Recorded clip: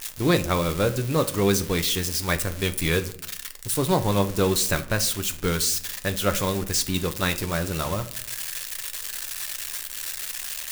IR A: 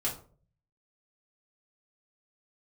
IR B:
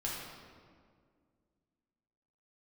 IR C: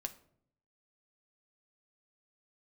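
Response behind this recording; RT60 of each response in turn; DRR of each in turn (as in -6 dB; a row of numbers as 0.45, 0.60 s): C; 0.45, 2.0, 0.65 s; -5.5, -5.5, 7.0 dB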